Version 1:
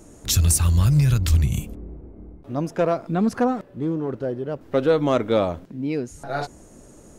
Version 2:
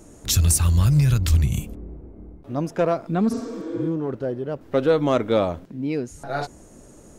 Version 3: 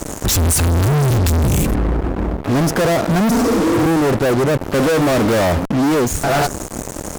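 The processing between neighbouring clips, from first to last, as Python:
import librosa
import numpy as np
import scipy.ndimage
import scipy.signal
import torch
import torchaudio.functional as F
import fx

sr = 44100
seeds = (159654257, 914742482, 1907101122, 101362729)

y1 = fx.spec_repair(x, sr, seeds[0], start_s=3.34, length_s=0.5, low_hz=230.0, high_hz=8300.0, source='both')
y2 = fx.fuzz(y1, sr, gain_db=45.0, gate_db=-44.0)
y2 = fx.dynamic_eq(y2, sr, hz=3300.0, q=0.78, threshold_db=-35.0, ratio=4.0, max_db=-4)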